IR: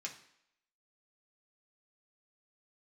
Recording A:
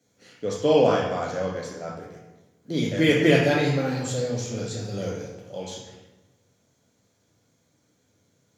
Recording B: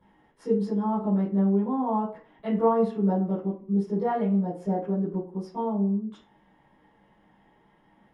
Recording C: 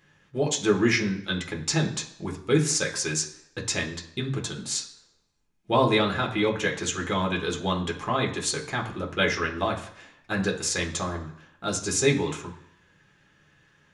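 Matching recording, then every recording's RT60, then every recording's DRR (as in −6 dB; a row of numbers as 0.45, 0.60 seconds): C; 1.1, 0.50, 0.70 seconds; −4.0, −12.0, −1.5 decibels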